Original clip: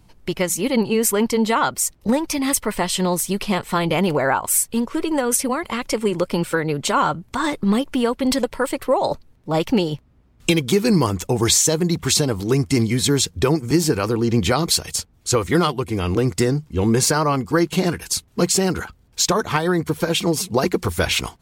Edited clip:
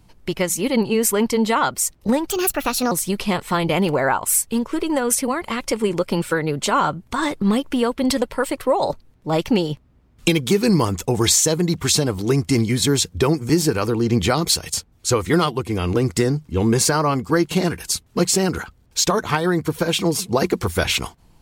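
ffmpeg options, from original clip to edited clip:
-filter_complex "[0:a]asplit=3[s0][s1][s2];[s0]atrim=end=2.304[s3];[s1]atrim=start=2.3:end=3.13,asetpts=PTS-STARTPTS,asetrate=59535,aresample=44100,atrim=end_sample=27113,asetpts=PTS-STARTPTS[s4];[s2]atrim=start=3.126[s5];[s3][s4]acrossfade=d=0.004:c1=hsin:c2=hsin[s6];[s6][s5]acrossfade=d=0.004:c1=hsin:c2=hsin"

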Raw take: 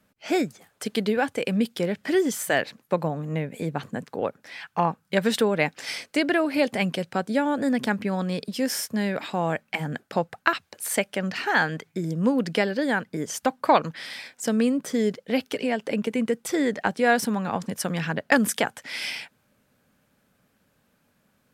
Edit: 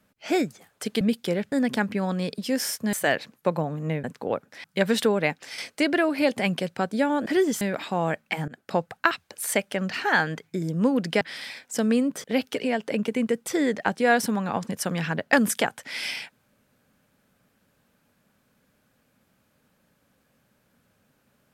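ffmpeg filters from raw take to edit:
-filter_complex "[0:a]asplit=12[s0][s1][s2][s3][s4][s5][s6][s7][s8][s9][s10][s11];[s0]atrim=end=1.012[s12];[s1]atrim=start=1.528:end=2.042[s13];[s2]atrim=start=7.618:end=9.032[s14];[s3]atrim=start=2.388:end=3.502[s15];[s4]atrim=start=3.958:end=4.562[s16];[s5]atrim=start=4.998:end=5.94,asetpts=PTS-STARTPTS,afade=t=out:st=0.512:d=0.43:silence=0.446684[s17];[s6]atrim=start=5.94:end=7.622,asetpts=PTS-STARTPTS,afade=t=in:d=0.004:c=hsin:silence=0.446684[s18];[s7]atrim=start=2.038:end=2.392[s19];[s8]atrim=start=9.028:end=9.9,asetpts=PTS-STARTPTS,afade=t=out:st=0.868:d=0.004:c=hsin:silence=0.0794328[s20];[s9]atrim=start=9.9:end=12.632,asetpts=PTS-STARTPTS,afade=t=in:d=0.25:silence=0.0794328[s21];[s10]atrim=start=13.898:end=14.932[s22];[s11]atrim=start=15.228[s23];[s12][s13]acrossfade=d=0.004:c1=hsin:c2=hsin[s24];[s24][s14]acrossfade=d=0.004:c1=hsin:c2=hsin[s25];[s25][s15]acrossfade=d=0.004:c1=hsin:c2=hsin[s26];[s26][s16]acrossfade=d=0.004:c1=hsin:c2=hsin[s27];[s17][s18]concat=n=2:v=0:a=1[s28];[s27][s28]acrossfade=d=0.004:c1=hsin:c2=hsin[s29];[s29][s19]acrossfade=d=0.004:c1=hsin:c2=hsin[s30];[s20][s21]concat=n=2:v=0:a=1[s31];[s30][s31]acrossfade=d=0.004:c1=hsin:c2=hsin[s32];[s32][s22]acrossfade=d=0.004:c1=hsin:c2=hsin[s33];[s33][s23]acrossfade=d=0.004:c1=hsin:c2=hsin"

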